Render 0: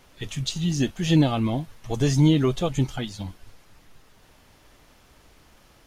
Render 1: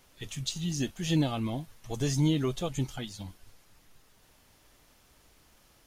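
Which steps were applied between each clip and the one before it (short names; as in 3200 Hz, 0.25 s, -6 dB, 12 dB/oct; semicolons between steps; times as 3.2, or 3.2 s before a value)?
high shelf 5300 Hz +8.5 dB; gain -8 dB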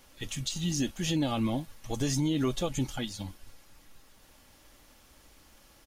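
comb 3.6 ms, depth 31%; limiter -23.5 dBFS, peak gain reduction 7.5 dB; gain +3 dB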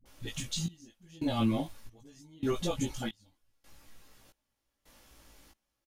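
dispersion highs, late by 57 ms, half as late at 360 Hz; step gate "xxxxxx....." 136 bpm -24 dB; doubler 18 ms -2.5 dB; gain -3 dB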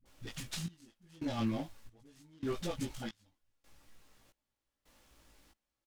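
noise-modulated delay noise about 1600 Hz, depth 0.032 ms; gain -5.5 dB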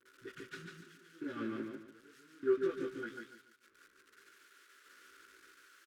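switching spikes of -36.5 dBFS; double band-pass 750 Hz, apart 1.9 oct; on a send: feedback echo 0.145 s, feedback 30%, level -4 dB; on the sum: gain +8.5 dB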